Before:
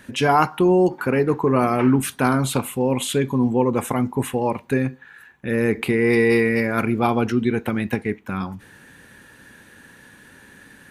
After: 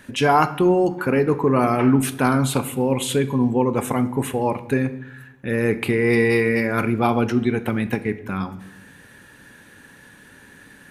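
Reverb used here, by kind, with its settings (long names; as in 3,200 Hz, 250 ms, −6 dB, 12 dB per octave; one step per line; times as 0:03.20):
rectangular room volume 470 cubic metres, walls mixed, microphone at 0.31 metres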